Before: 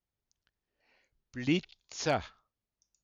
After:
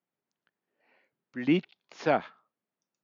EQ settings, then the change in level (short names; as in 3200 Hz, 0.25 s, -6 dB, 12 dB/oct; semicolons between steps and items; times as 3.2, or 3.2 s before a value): HPF 170 Hz 24 dB/oct; LPF 2200 Hz 12 dB/oct; +5.0 dB